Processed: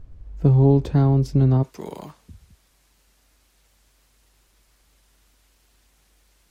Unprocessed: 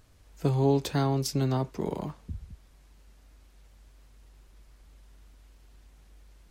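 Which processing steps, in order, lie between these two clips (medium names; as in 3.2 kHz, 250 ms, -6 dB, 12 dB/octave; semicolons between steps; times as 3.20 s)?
tilt EQ -4 dB/octave, from 1.62 s +2 dB/octave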